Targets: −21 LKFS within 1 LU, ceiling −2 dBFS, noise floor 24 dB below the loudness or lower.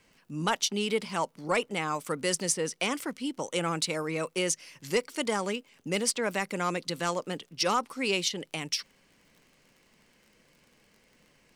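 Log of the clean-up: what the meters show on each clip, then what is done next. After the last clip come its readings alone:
crackle rate 44 per second; integrated loudness −30.5 LKFS; sample peak −15.0 dBFS; target loudness −21.0 LKFS
→ click removal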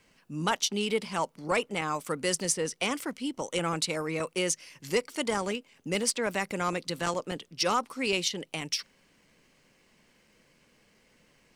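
crackle rate 0.52 per second; integrated loudness −30.5 LKFS; sample peak −15.0 dBFS; target loudness −21.0 LKFS
→ level +9.5 dB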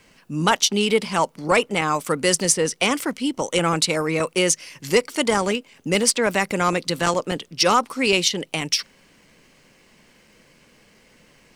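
integrated loudness −21.0 LKFS; sample peak −5.5 dBFS; background noise floor −56 dBFS

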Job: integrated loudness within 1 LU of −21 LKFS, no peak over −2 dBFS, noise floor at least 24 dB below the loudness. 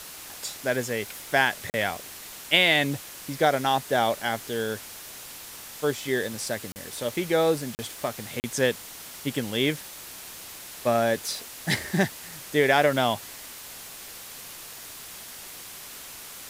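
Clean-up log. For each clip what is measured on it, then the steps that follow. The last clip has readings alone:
number of dropouts 4; longest dropout 39 ms; background noise floor −42 dBFS; target noise floor −50 dBFS; integrated loudness −26.0 LKFS; sample peak −3.5 dBFS; target loudness −21.0 LKFS
→ repair the gap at 0:01.70/0:06.72/0:07.75/0:08.40, 39 ms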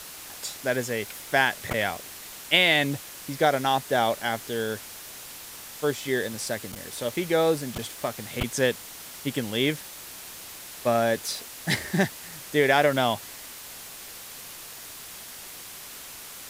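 number of dropouts 0; background noise floor −42 dBFS; target noise floor −50 dBFS
→ broadband denoise 8 dB, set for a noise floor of −42 dBFS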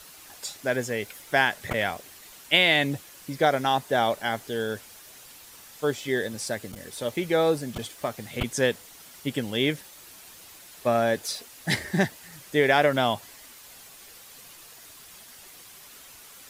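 background noise floor −49 dBFS; target noise floor −50 dBFS
→ broadband denoise 6 dB, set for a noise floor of −49 dBFS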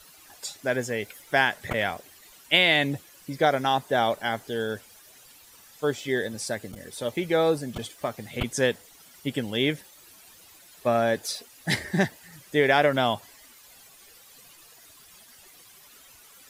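background noise floor −53 dBFS; integrated loudness −26.0 LKFS; sample peak −3.5 dBFS; target loudness −21.0 LKFS
→ level +5 dB
brickwall limiter −2 dBFS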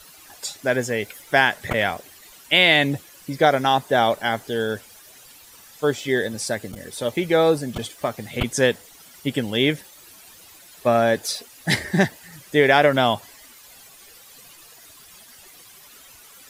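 integrated loudness −21.0 LKFS; sample peak −2.0 dBFS; background noise floor −48 dBFS

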